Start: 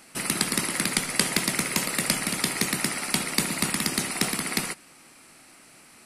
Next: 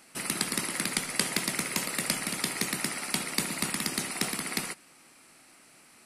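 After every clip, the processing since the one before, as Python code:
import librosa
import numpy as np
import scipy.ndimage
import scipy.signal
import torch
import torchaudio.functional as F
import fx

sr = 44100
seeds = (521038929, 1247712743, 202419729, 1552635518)

y = fx.low_shelf(x, sr, hz=130.0, db=-4.5)
y = y * librosa.db_to_amplitude(-4.5)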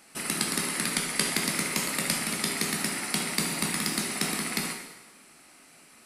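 y = fx.rev_plate(x, sr, seeds[0], rt60_s=1.1, hf_ratio=0.9, predelay_ms=0, drr_db=2.0)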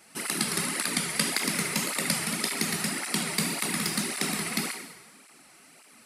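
y = fx.flanger_cancel(x, sr, hz=1.8, depth_ms=4.2)
y = y * librosa.db_to_amplitude(3.0)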